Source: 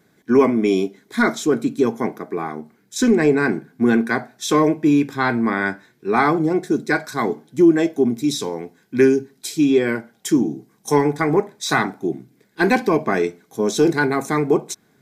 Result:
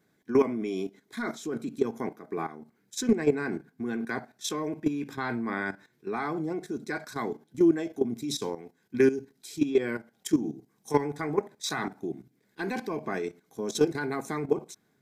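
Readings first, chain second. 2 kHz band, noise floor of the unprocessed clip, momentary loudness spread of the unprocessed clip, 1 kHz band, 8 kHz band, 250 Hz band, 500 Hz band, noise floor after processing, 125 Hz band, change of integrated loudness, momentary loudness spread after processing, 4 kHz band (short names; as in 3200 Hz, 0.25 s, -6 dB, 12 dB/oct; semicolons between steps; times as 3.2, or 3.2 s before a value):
-13.0 dB, -60 dBFS, 11 LU, -13.0 dB, -9.0 dB, -11.5 dB, -10.0 dB, -70 dBFS, -11.5 dB, -11.0 dB, 12 LU, -9.0 dB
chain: level quantiser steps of 13 dB; gain -5 dB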